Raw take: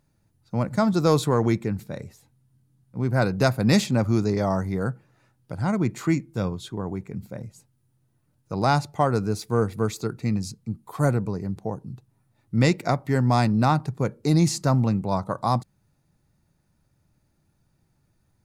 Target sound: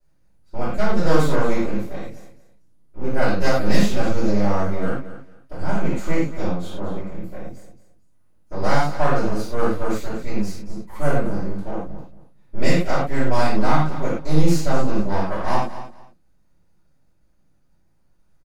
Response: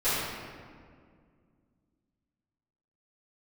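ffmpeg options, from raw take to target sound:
-filter_complex "[0:a]aecho=1:1:226|452:0.211|0.0444,aeval=exprs='max(val(0),0)':c=same[s0];[1:a]atrim=start_sample=2205,atrim=end_sample=6615,asetrate=52920,aresample=44100[s1];[s0][s1]afir=irnorm=-1:irlink=0,volume=0.501"

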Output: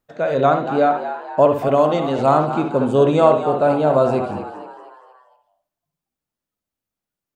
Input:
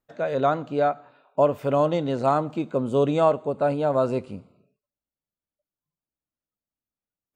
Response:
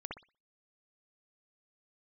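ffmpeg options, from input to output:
-filter_complex "[0:a]asettb=1/sr,asplit=3[s0][s1][s2];[s0]atrim=end=1.684[s3];[s1]atrim=start=1.68:end=2.19,asetpts=PTS-STARTPTS,afade=t=in:d=0.004:c=qsin,afade=t=out:st=0.506:d=0.004:c=qsin,lowshelf=f=150:g=-11.5[s4];[s2]atrim=start=2.186[s5];[s3][s4]acrossfade=d=0.004:c1=hsin:c2=qsin[s6];[s6][s5]acrossfade=d=0.004:c1=qsin:c2=hsin,asplit=6[s7][s8][s9][s10][s11][s12];[s8]adelay=234,afreqshift=98,volume=0.266[s13];[s9]adelay=468,afreqshift=196,volume=0.124[s14];[s10]adelay=702,afreqshift=294,volume=0.0589[s15];[s11]adelay=936,afreqshift=392,volume=0.0275[s16];[s12]adelay=1170,afreqshift=490,volume=0.013[s17];[s7][s13][s14][s15][s16][s17]amix=inputs=6:normalize=0,asplit=2[s18][s19];[1:a]atrim=start_sample=2205[s20];[s19][s20]afir=irnorm=-1:irlink=0,volume=1.06[s21];[s18][s21]amix=inputs=2:normalize=0,volume=1.19"

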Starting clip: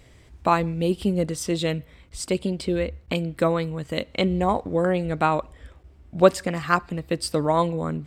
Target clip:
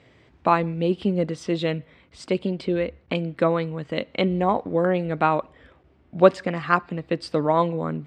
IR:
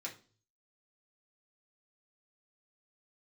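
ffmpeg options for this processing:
-af "highpass=140,lowpass=3400,volume=1.12"

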